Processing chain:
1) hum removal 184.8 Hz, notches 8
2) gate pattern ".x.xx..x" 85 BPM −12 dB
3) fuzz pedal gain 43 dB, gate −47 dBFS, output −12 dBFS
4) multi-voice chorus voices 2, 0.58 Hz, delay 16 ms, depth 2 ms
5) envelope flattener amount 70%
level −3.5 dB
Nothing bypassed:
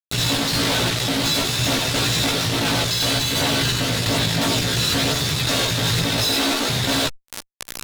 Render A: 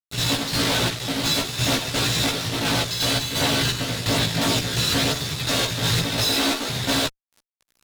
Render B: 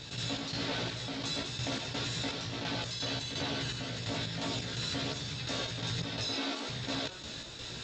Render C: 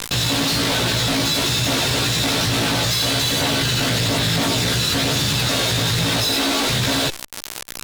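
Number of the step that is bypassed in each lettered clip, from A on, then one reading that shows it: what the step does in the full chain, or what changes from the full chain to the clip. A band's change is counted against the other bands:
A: 5, change in crest factor −7.0 dB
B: 3, distortion level −4 dB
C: 2, change in integrated loudness +1.0 LU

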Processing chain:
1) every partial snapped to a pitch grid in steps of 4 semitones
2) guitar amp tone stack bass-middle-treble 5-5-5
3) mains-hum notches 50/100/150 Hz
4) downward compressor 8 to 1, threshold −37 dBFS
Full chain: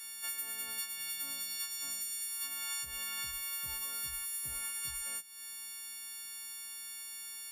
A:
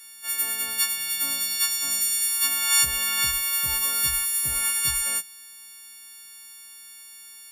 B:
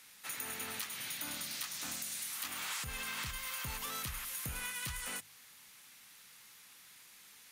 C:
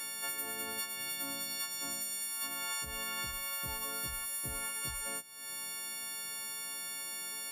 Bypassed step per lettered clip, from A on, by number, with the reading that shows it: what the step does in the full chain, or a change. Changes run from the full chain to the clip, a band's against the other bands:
4, average gain reduction 9.5 dB
1, 8 kHz band −9.5 dB
2, 500 Hz band +8.0 dB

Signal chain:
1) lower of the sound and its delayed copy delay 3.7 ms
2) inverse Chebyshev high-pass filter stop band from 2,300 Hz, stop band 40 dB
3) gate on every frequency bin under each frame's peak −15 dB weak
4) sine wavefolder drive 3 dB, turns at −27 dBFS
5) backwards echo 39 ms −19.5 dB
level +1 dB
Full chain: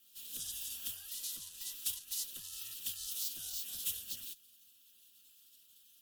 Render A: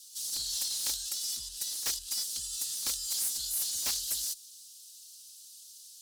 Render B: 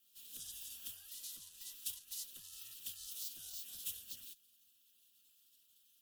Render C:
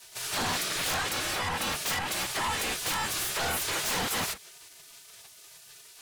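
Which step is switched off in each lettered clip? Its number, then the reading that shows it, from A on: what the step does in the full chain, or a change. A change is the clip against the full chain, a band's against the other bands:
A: 3, 250 Hz band −4.0 dB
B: 4, distortion level −19 dB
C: 2, 8 kHz band −17.0 dB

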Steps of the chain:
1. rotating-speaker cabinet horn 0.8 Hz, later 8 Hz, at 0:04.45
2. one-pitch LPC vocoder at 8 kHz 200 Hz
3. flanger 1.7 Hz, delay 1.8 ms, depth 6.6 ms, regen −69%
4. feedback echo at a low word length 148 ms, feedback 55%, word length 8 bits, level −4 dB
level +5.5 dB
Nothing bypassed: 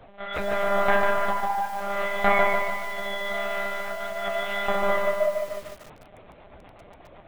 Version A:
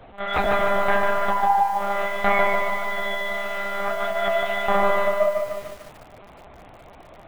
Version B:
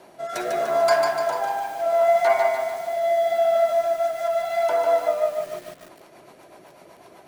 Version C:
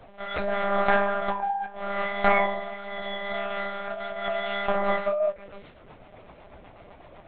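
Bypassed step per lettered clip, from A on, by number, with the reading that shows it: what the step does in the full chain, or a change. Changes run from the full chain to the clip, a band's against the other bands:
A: 1, 1 kHz band +2.0 dB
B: 2, 2 kHz band −7.5 dB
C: 4, 250 Hz band +2.5 dB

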